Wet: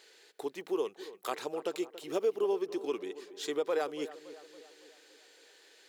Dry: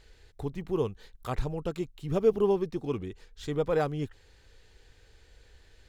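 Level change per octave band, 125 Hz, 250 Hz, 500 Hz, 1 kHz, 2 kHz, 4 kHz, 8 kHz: under -25 dB, -6.0 dB, -3.5 dB, -3.0 dB, -0.5 dB, +3.5 dB, n/a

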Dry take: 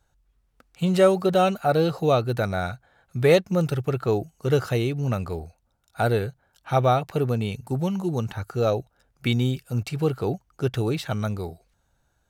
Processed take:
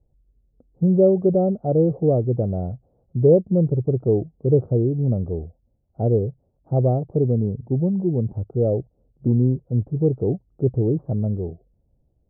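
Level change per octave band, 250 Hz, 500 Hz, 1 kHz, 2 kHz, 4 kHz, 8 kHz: +5.0 dB, +2.5 dB, -9.5 dB, under -35 dB, under -40 dB, under -35 dB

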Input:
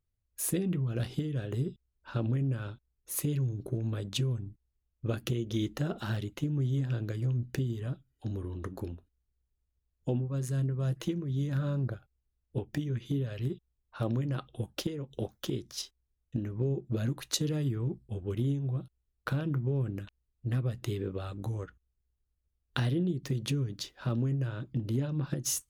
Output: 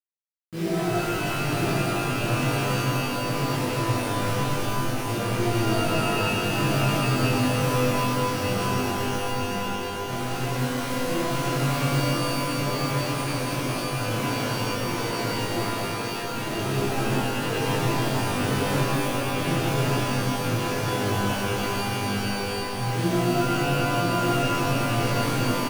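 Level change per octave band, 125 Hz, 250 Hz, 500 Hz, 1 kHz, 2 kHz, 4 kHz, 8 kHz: +4.5, +8.5, +12.5, +23.0, +18.5, +13.5, +7.5 dB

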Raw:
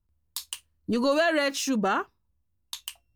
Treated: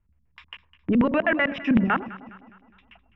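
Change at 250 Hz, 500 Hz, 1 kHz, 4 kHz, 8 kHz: +6.0 dB, -1.5 dB, +0.5 dB, -7.5 dB, under -35 dB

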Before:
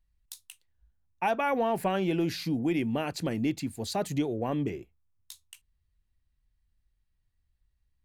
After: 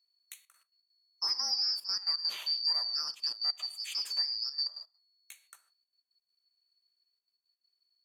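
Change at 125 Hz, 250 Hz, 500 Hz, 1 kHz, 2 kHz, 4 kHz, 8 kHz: under -40 dB, under -40 dB, under -30 dB, -18.0 dB, -12.5 dB, +13.5 dB, +0.5 dB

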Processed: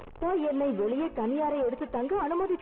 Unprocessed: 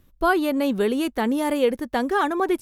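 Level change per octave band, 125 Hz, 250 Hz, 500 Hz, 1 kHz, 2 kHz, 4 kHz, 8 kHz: n/a, -7.0 dB, -5.0 dB, -7.5 dB, -16.5 dB, under -15 dB, under -40 dB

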